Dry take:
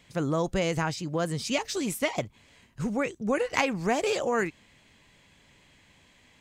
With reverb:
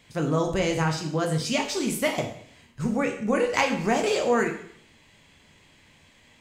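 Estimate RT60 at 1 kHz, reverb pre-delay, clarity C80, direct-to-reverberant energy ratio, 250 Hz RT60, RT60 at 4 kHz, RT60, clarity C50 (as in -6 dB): 0.65 s, 4 ms, 11.5 dB, 2.5 dB, 0.60 s, 0.55 s, 0.60 s, 8.5 dB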